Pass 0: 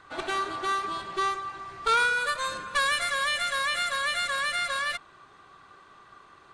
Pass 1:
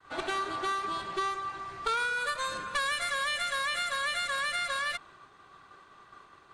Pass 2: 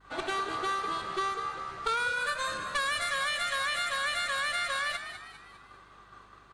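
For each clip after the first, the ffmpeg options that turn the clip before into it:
-af "agate=range=-33dB:threshold=-50dB:ratio=3:detection=peak,acompressor=threshold=-29dB:ratio=3"
-filter_complex "[0:a]aeval=exprs='val(0)+0.000631*(sin(2*PI*50*n/s)+sin(2*PI*2*50*n/s)/2+sin(2*PI*3*50*n/s)/3+sin(2*PI*4*50*n/s)/4+sin(2*PI*5*50*n/s)/5)':c=same,asplit=6[a][b][c][d][e][f];[b]adelay=200,afreqshift=73,volume=-10dB[g];[c]adelay=400,afreqshift=146,volume=-16.9dB[h];[d]adelay=600,afreqshift=219,volume=-23.9dB[i];[e]adelay=800,afreqshift=292,volume=-30.8dB[j];[f]adelay=1000,afreqshift=365,volume=-37.7dB[k];[a][g][h][i][j][k]amix=inputs=6:normalize=0"

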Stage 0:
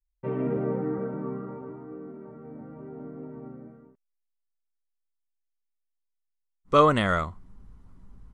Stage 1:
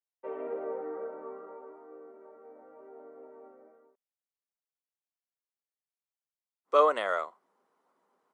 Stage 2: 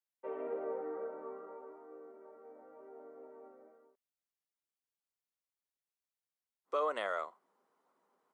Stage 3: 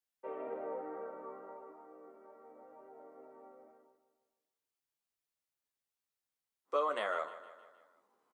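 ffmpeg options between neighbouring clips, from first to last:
-af "highpass=f=500:w=0.5412,highpass=f=500:w=1.3066,tiltshelf=f=900:g=6,volume=-3dB"
-af "alimiter=limit=-21.5dB:level=0:latency=1:release=154,volume=-3dB"
-filter_complex "[0:a]asplit=2[a][b];[b]adelay=14,volume=-6.5dB[c];[a][c]amix=inputs=2:normalize=0,aecho=1:1:155|310|465|620|775:0.188|0.104|0.057|0.0313|0.0172"

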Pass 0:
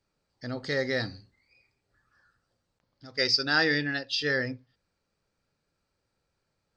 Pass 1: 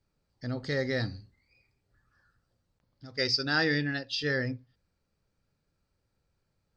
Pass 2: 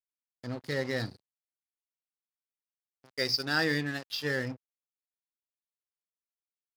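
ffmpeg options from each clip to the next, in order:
-af "lowshelf=f=210:g=10,volume=-3.5dB"
-af "aeval=exprs='sgn(val(0))*max(abs(val(0))-0.00891,0)':c=same,highpass=93"

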